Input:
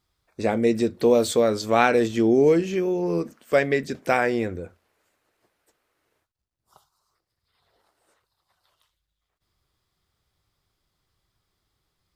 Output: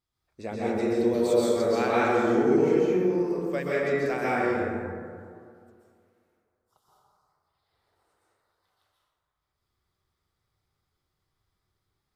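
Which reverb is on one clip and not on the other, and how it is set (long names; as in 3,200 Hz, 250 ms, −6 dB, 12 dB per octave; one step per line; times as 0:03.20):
dense smooth reverb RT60 2.2 s, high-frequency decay 0.35×, pre-delay 115 ms, DRR −8 dB
level −12.5 dB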